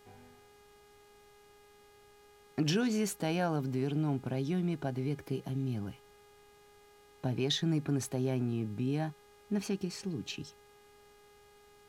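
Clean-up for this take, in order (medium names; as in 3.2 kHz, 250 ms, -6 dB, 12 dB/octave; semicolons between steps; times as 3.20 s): de-hum 411.4 Hz, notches 35; expander -52 dBFS, range -21 dB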